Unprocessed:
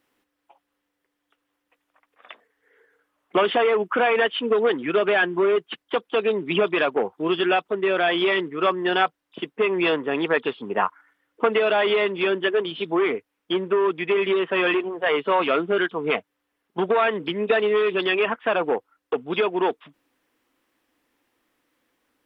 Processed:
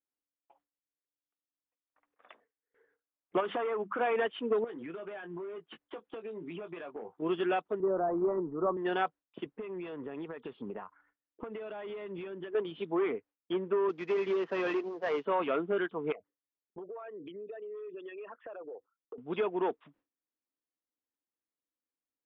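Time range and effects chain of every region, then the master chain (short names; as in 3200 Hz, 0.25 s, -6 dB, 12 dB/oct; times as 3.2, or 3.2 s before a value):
3.4–4.01 notches 50/100/150/200/250 Hz + dynamic EQ 1200 Hz, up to +6 dB, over -36 dBFS, Q 1.5 + compressor 3:1, threshold -21 dBFS
4.64–7.22 doubler 18 ms -8 dB + compressor 10:1, threshold -29 dBFS
7.8–8.77 G.711 law mismatch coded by mu + steep low-pass 1200 Hz + low shelf 120 Hz +8.5 dB
9.46–12.55 compressor 12:1, threshold -29 dBFS + low shelf 170 Hz +8.5 dB
13.89–15.25 CVSD 32 kbps + HPF 160 Hz
16.12–19.18 formant sharpening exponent 2 + compressor, threshold -33 dBFS
whole clip: gate with hold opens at -50 dBFS; LPF 1200 Hz 6 dB/oct; gain -8 dB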